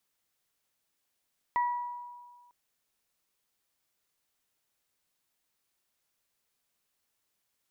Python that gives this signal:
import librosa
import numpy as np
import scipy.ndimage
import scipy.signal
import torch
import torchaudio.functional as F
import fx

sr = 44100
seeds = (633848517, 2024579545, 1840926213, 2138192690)

y = fx.additive(sr, length_s=0.95, hz=970.0, level_db=-23.5, upper_db=(-10,), decay_s=1.63, upper_decays_s=(0.62,))